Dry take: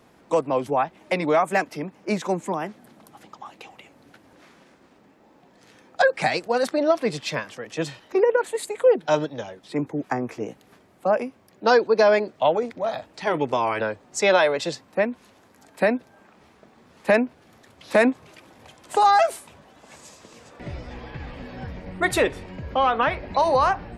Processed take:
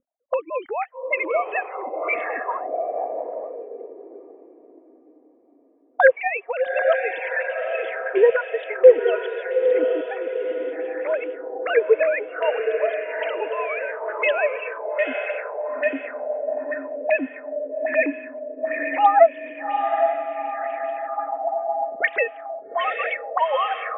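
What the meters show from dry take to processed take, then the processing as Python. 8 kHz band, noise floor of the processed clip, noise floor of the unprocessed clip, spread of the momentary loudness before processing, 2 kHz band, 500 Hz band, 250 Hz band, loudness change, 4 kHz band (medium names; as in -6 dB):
under -40 dB, -55 dBFS, -56 dBFS, 18 LU, +3.0 dB, +2.5 dB, -7.5 dB, 0.0 dB, no reading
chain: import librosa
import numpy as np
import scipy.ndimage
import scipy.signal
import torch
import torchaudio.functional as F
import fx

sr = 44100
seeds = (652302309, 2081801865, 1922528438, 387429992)

p1 = fx.sine_speech(x, sr)
p2 = fx.low_shelf(p1, sr, hz=190.0, db=8.5)
p3 = fx.dereverb_blind(p2, sr, rt60_s=0.54)
p4 = fx.peak_eq(p3, sr, hz=2100.0, db=6.5, octaves=0.67)
p5 = p4 + fx.echo_diffused(p4, sr, ms=830, feedback_pct=51, wet_db=-5.0, dry=0)
p6 = fx.envelope_lowpass(p5, sr, base_hz=250.0, top_hz=3000.0, q=5.0, full_db=-22.0, direction='up')
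y = p6 * 10.0 ** (-2.0 / 20.0)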